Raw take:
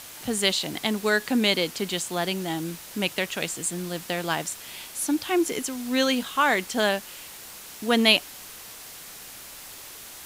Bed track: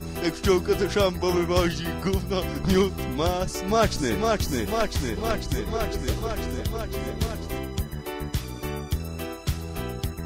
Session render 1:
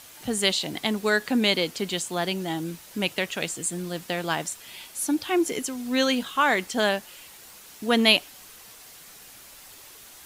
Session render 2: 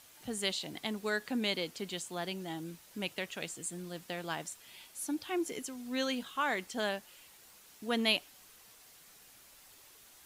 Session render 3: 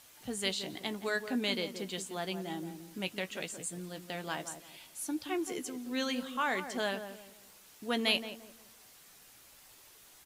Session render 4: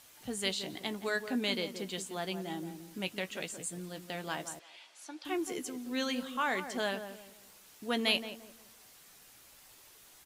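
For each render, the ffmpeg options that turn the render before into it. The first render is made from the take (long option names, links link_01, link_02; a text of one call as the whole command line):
ffmpeg -i in.wav -af "afftdn=noise_reduction=6:noise_floor=-43" out.wav
ffmpeg -i in.wav -af "volume=-11dB" out.wav
ffmpeg -i in.wav -filter_complex "[0:a]asplit=2[link_01][link_02];[link_02]adelay=16,volume=-11.5dB[link_03];[link_01][link_03]amix=inputs=2:normalize=0,asplit=2[link_04][link_05];[link_05]adelay=173,lowpass=frequency=1000:poles=1,volume=-8dB,asplit=2[link_06][link_07];[link_07]adelay=173,lowpass=frequency=1000:poles=1,volume=0.34,asplit=2[link_08][link_09];[link_09]adelay=173,lowpass=frequency=1000:poles=1,volume=0.34,asplit=2[link_10][link_11];[link_11]adelay=173,lowpass=frequency=1000:poles=1,volume=0.34[link_12];[link_06][link_08][link_10][link_12]amix=inputs=4:normalize=0[link_13];[link_04][link_13]amix=inputs=2:normalize=0" out.wav
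ffmpeg -i in.wav -filter_complex "[0:a]asettb=1/sr,asplit=3[link_01][link_02][link_03];[link_01]atrim=end=4.594[link_04];[link_02]atrim=start=4.59:end=5.25,asetpts=PTS-STARTPTS,afade=type=in:duration=0.004:curve=qsin,afade=type=out:start_time=0.656:duration=0.004:curve=qsin,highpass=580,lowpass=4900[link_05];[link_03]atrim=start=5.246[link_06];[link_04][link_05]acrossfade=duration=0.004:curve1=hsin:curve2=qsin[link_07];[link_07][link_06]acrossfade=duration=0.004:curve1=qsin:curve2=hsin" out.wav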